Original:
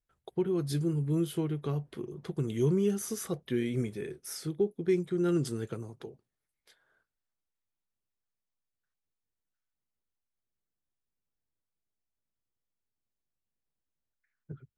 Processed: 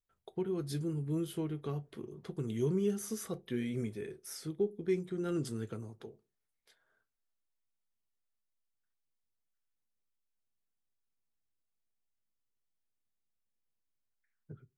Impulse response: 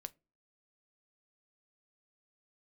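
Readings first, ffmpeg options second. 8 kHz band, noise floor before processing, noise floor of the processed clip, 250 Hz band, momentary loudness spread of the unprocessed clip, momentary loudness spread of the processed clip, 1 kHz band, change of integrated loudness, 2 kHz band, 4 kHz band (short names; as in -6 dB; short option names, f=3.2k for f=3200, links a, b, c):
-4.5 dB, under -85 dBFS, -84 dBFS, -5.0 dB, 13 LU, 13 LU, -4.0 dB, -5.0 dB, -4.5 dB, -4.5 dB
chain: -filter_complex "[1:a]atrim=start_sample=2205,asetrate=57330,aresample=44100[a];[0:a][a]afir=irnorm=-1:irlink=0,volume=2.5dB"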